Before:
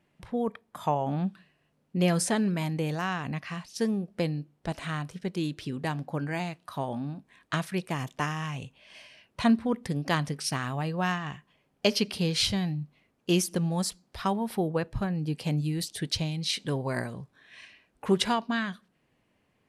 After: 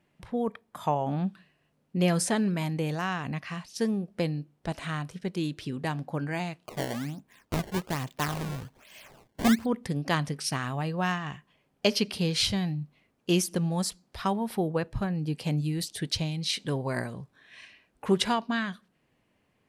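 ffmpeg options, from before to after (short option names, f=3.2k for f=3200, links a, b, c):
-filter_complex "[0:a]asettb=1/sr,asplit=3[a][b][c];[a]atrim=end=6.654[d];[b]atrim=start=6.65:end=9.66,asetpts=PTS-STARTPTS,afade=t=in:d=0.004:c=qsin,afade=t=out:st=3.006:d=0.004:c=qsin,acrusher=samples=20:mix=1:aa=0.000001:lfo=1:lforange=32:lforate=1.2[e];[c]atrim=start=9.656[f];[d][e]acrossfade=d=0.004:c1=hsin:c2=qsin[g];[g][f]acrossfade=d=0.004:c1=qsin:c2=hsin"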